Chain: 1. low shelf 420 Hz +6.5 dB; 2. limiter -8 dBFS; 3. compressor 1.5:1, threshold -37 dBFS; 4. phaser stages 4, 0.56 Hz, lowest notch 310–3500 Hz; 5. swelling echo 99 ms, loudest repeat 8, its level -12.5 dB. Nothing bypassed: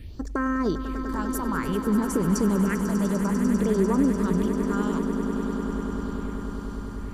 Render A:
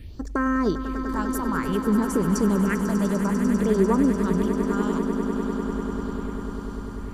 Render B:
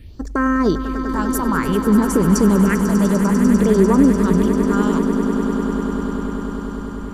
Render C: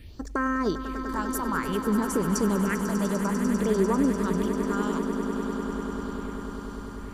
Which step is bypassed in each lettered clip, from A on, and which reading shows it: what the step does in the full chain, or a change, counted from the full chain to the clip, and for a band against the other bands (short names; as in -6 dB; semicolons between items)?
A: 2, 8 kHz band -2.0 dB; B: 3, mean gain reduction 5.5 dB; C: 1, 125 Hz band -5.0 dB